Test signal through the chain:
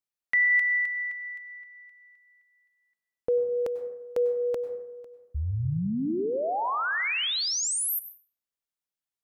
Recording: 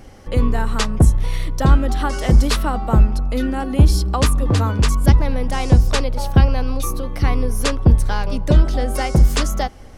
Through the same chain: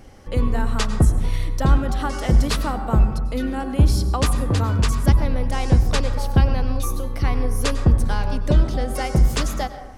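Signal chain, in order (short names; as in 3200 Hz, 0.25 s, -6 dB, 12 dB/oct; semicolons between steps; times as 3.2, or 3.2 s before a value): plate-style reverb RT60 1 s, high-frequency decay 0.35×, pre-delay 85 ms, DRR 10 dB; gain -3.5 dB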